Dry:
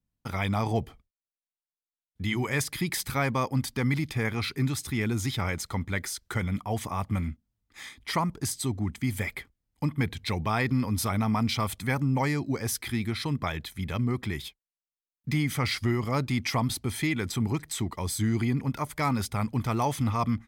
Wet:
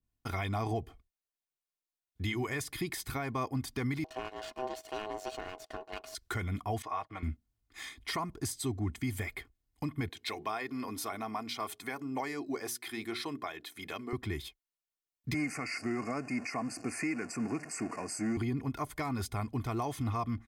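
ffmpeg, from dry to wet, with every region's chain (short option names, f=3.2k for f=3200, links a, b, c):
-filter_complex "[0:a]asettb=1/sr,asplit=3[a][b][c];[a]atrim=end=4.044[d];[b]atrim=start=4.04:end=6.15,asetpts=PTS-STARTPTS,afade=t=in:d=0.004:c=qsin,afade=t=out:st=2.106:d=0.004:c=qsin,highpass=140,lowpass=6.7k,aeval=exprs='max(val(0),0)':c=same,aeval=exprs='val(0)*sin(2*PI*640*n/s)':c=same[e];[c]atrim=start=6.146[f];[d][e]acrossfade=d=0.004:c1=hsin:c2=qsin[g];[g][f]acrossfade=d=0.004:c1=qsin:c2=hsin,asettb=1/sr,asplit=3[h][i][j];[h]atrim=end=6.824[k];[i]atrim=start=6.82:end=7.23,asetpts=PTS-STARTPTS,afade=t=in:d=0.004:c=qsin,afade=t=out:st=0.406:d=0.004:c=qsin,agate=range=-19dB:threshold=-41dB:ratio=16:release=100:detection=peak,acrossover=split=440 5300:gain=0.141 1 0.1[l][m][n];[l][m][n]amix=inputs=3:normalize=0,aecho=1:1:6.4:0.46,atrim=end_sample=18081[o];[j]atrim=start=7.226[p];[k][o]acrossfade=d=0.004:c1=hsin:c2=qsin[q];[q][p]acrossfade=d=0.004:c1=qsin:c2=hsin,asettb=1/sr,asplit=3[r][s][t];[r]atrim=end=10.094[u];[s]atrim=start=10.09:end=14.13,asetpts=PTS-STARTPTS,afade=t=in:d=0.004:c=qsin,afade=t=out:st=4.036:d=0.004:c=qsin,highpass=320,bandreject=f=60:t=h:w=6,bandreject=f=120:t=h:w=6,bandreject=f=180:t=h:w=6,bandreject=f=240:t=h:w=6,bandreject=f=300:t=h:w=6,bandreject=f=360:t=h:w=6,bandreject=f=420:t=h:w=6[v];[t]atrim=start=14.126[w];[u][v]acrossfade=d=0.004:c1=hsin:c2=qsin[x];[x][w]acrossfade=d=0.004:c1=qsin:c2=hsin,asettb=1/sr,asplit=3[y][z][aa];[y]atrim=end=15.344[ab];[z]atrim=start=15.34:end=18.37,asetpts=PTS-STARTPTS,afade=t=in:d=0.004:c=qsin,afade=t=out:st=3.026:d=0.004:c=qsin,aeval=exprs='val(0)+0.5*0.0266*sgn(val(0))':c=same,asuperstop=centerf=3500:order=20:qfactor=2.2,highpass=f=180:w=0.5412,highpass=f=180:w=1.3066,equalizer=f=380:t=q:w=4:g=-8,equalizer=f=960:t=q:w=4:g=-6,equalizer=f=3.8k:t=q:w=4:g=-9,equalizer=f=5.6k:t=q:w=4:g=-6,lowpass=f=8.5k:w=0.5412,lowpass=f=8.5k:w=1.3066[ac];[aa]atrim=start=18.366[ad];[ab][ac]acrossfade=d=0.004:c1=hsin:c2=qsin[ae];[ae][ad]acrossfade=d=0.004:c1=qsin:c2=hsin,aecho=1:1:2.8:0.5,alimiter=limit=-22.5dB:level=0:latency=1:release=302,adynamicequalizer=threshold=0.00501:dfrequency=1500:dqfactor=0.7:tfrequency=1500:tqfactor=0.7:attack=5:release=100:ratio=0.375:range=2:mode=cutabove:tftype=highshelf,volume=-2dB"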